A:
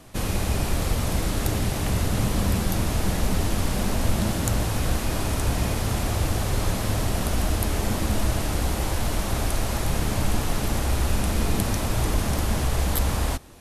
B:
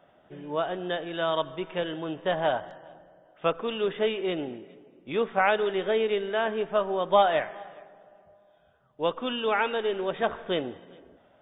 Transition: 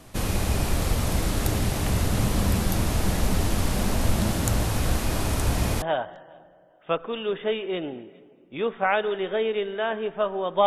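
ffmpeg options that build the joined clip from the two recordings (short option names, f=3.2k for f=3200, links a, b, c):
-filter_complex "[0:a]apad=whole_dur=10.66,atrim=end=10.66,atrim=end=5.822[a];[1:a]atrim=start=2.368:end=7.21[b];[a][b]acrossfade=d=0.004:c1=hsin:c2=hsin"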